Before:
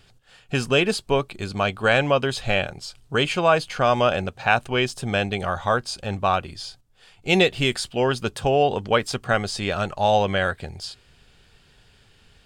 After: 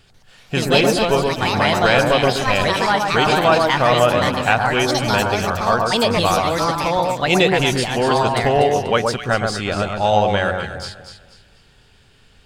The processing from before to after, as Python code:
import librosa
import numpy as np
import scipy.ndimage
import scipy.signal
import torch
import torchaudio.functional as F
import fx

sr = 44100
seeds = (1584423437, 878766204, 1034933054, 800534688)

y = fx.echo_pitch(x, sr, ms=142, semitones=4, count=2, db_per_echo=-3.0)
y = fx.echo_alternate(y, sr, ms=122, hz=1500.0, feedback_pct=55, wet_db=-3)
y = y * librosa.db_to_amplitude(2.0)